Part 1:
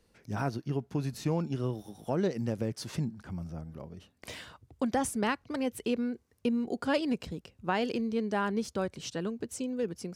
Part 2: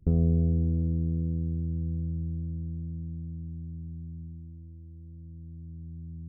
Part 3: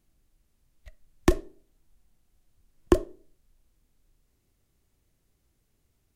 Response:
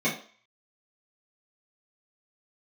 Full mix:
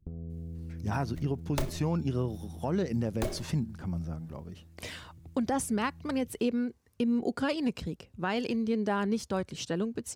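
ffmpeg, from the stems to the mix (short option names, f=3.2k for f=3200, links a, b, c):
-filter_complex "[0:a]aphaser=in_gain=1:out_gain=1:delay=1.2:decay=0.26:speed=1.2:type=triangular,adelay=550,volume=1.5dB[a];[1:a]acompressor=threshold=-28dB:ratio=6,volume=-9dB[b];[2:a]equalizer=f=310:w=3:g=-6.5,acrusher=bits=3:mode=log:mix=0:aa=0.000001,aeval=exprs='0.168*(abs(mod(val(0)/0.168+3,4)-2)-1)':c=same,adelay=300,volume=0.5dB,asplit=2[c][d];[d]volume=-22.5dB[e];[3:a]atrim=start_sample=2205[f];[e][f]afir=irnorm=-1:irlink=0[g];[a][b][c][g]amix=inputs=4:normalize=0,alimiter=limit=-20dB:level=0:latency=1:release=139"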